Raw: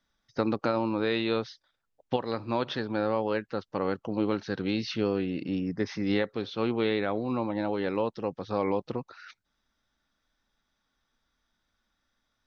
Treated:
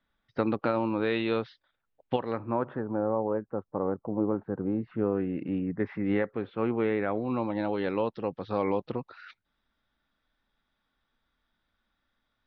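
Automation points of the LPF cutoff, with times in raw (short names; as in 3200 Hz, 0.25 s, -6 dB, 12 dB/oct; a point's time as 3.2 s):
LPF 24 dB/oct
2.21 s 3400 Hz
2.49 s 1800 Hz
3.01 s 1100 Hz
4.65 s 1100 Hz
5.46 s 2200 Hz
6.98 s 2200 Hz
7.44 s 4000 Hz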